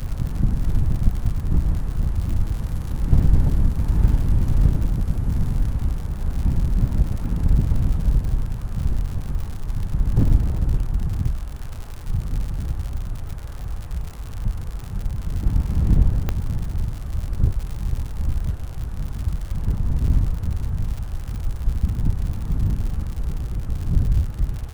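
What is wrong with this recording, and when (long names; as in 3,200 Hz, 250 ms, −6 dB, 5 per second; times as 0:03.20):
surface crackle 110 per second −28 dBFS
0:16.29: click −10 dBFS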